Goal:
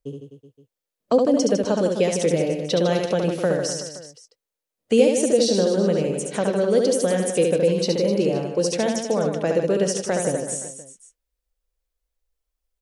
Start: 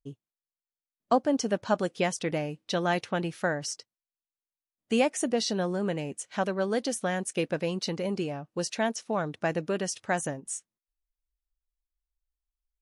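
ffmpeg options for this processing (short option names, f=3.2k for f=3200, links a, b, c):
-filter_complex "[0:a]equalizer=f=500:t=o:w=0.53:g=13,acrossover=split=400|3000[a][b][c];[b]acompressor=threshold=-32dB:ratio=6[d];[a][d][c]amix=inputs=3:normalize=0,aecho=1:1:70|154|254.8|375.8|520.9:0.631|0.398|0.251|0.158|0.1,volume=5.5dB"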